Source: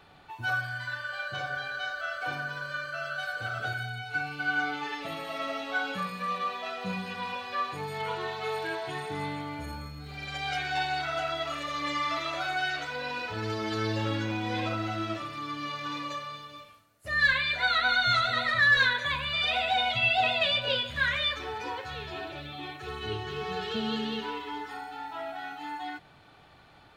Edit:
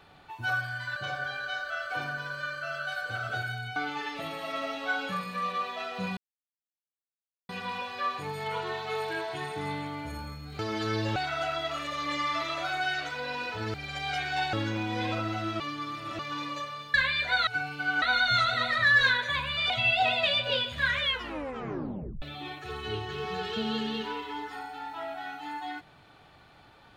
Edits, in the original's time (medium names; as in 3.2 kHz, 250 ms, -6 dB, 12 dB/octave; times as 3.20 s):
0.96–1.27 s: delete
4.07–4.62 s: move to 17.78 s
7.03 s: insert silence 1.32 s
10.13–10.92 s: swap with 13.50–14.07 s
15.14–15.73 s: reverse
16.48–17.25 s: delete
19.46–19.88 s: delete
21.18 s: tape stop 1.22 s